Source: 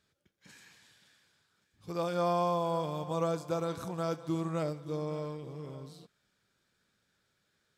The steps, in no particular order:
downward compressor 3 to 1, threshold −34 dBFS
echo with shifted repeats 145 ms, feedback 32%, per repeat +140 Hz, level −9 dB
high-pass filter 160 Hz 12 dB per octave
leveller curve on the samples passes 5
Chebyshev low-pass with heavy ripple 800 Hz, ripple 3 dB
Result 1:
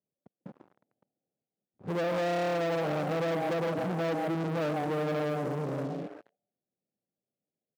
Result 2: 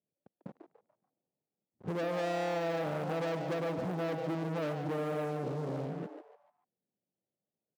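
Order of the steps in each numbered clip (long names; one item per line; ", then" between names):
echo with shifted repeats, then Chebyshev low-pass with heavy ripple, then downward compressor, then leveller curve on the samples, then high-pass filter
Chebyshev low-pass with heavy ripple, then leveller curve on the samples, then high-pass filter, then downward compressor, then echo with shifted repeats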